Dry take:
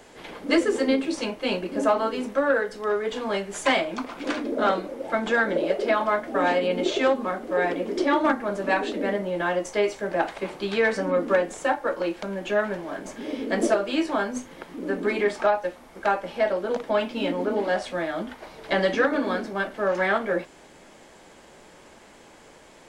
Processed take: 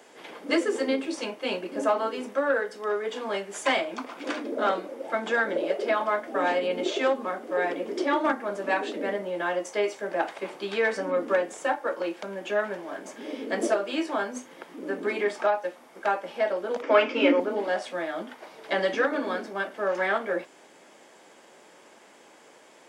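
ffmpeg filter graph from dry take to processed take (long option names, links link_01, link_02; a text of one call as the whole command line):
ffmpeg -i in.wav -filter_complex "[0:a]asettb=1/sr,asplit=3[link_01][link_02][link_03];[link_01]atrim=end=16.824[link_04];[link_02]atrim=start=16.82:end=17.4,asetpts=PTS-STARTPTS,afade=type=in:duration=0.004:curve=qsin,afade=type=out:start_time=0.576:duration=0.004:curve=qsin,acontrast=68,highpass=frequency=280:width=0.5412,highpass=frequency=280:width=1.3066,equalizer=frequency=280:width_type=q:width=4:gain=9,equalizer=frequency=520:width_type=q:width=4:gain=5,equalizer=frequency=750:width_type=q:width=4:gain=-7,equalizer=frequency=1300:width_type=q:width=4:gain=6,equalizer=frequency=2300:width_type=q:width=4:gain=8,equalizer=frequency=3900:width_type=q:width=4:gain=-9,lowpass=frequency=6100:width=0.5412,lowpass=frequency=6100:width=1.3066[link_05];[link_03]atrim=start=17.396[link_06];[link_04][link_05]acrossfade=duration=0.004:curve1=hsin:curve2=qsin[link_07];[link_07][link_06]acrossfade=duration=0.004:curve1=qsin:curve2=hsin,highpass=270,bandreject=frequency=4100:width=17,volume=-2.5dB" out.wav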